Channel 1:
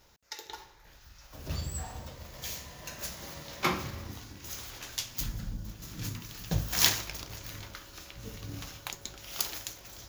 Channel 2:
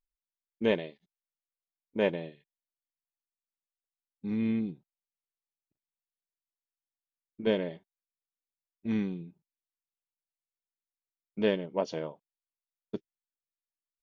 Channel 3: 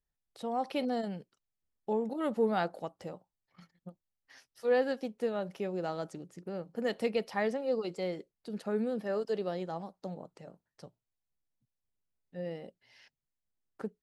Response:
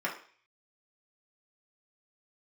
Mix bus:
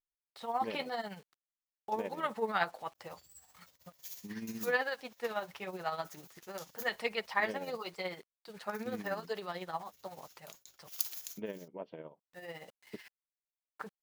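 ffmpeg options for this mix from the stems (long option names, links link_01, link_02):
-filter_complex "[0:a]agate=range=-27dB:threshold=-45dB:ratio=16:detection=peak,lowshelf=frequency=460:gain=-9.5,crystalizer=i=2.5:c=0,adelay=1600,volume=-4.5dB,asplit=3[link_01][link_02][link_03];[link_01]atrim=end=7.91,asetpts=PTS-STARTPTS,afade=type=out:start_time=7.906:duration=0.004:curve=hsin[link_04];[link_02]atrim=start=7.91:end=8.69,asetpts=PTS-STARTPTS,volume=0[link_05];[link_03]atrim=start=8.69,asetpts=PTS-STARTPTS,afade=type=in:duration=0.004:curve=hsin[link_06];[link_04][link_05][link_06]concat=n=3:v=0:a=1[link_07];[1:a]lowpass=frequency=2900:width=0.5412,lowpass=frequency=2900:width=1.3066,acompressor=threshold=-36dB:ratio=1.5,volume=-6.5dB[link_08];[2:a]flanger=delay=4.6:depth=4:regen=-35:speed=0.85:shape=sinusoidal,equalizer=frequency=250:width_type=o:width=1:gain=-8,equalizer=frequency=500:width_type=o:width=1:gain=-3,equalizer=frequency=1000:width_type=o:width=1:gain=10,equalizer=frequency=2000:width_type=o:width=1:gain=8,equalizer=frequency=4000:width_type=o:width=1:gain=6,acrusher=bits=9:mix=0:aa=0.000001,volume=1.5dB,asplit=2[link_09][link_10];[link_10]apad=whole_len=515122[link_11];[link_07][link_11]sidechaincompress=threshold=-55dB:ratio=4:attack=42:release=1470[link_12];[link_12][link_08][link_09]amix=inputs=3:normalize=0,lowshelf=frequency=77:gain=-6.5,tremolo=f=16:d=0.56"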